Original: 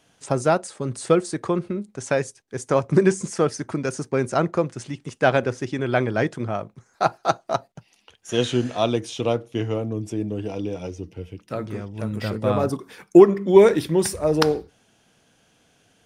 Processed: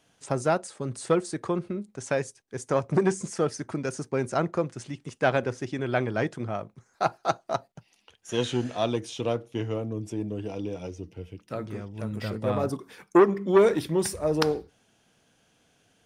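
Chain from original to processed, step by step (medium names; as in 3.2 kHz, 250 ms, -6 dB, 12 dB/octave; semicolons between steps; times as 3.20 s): transformer saturation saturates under 680 Hz; trim -4.5 dB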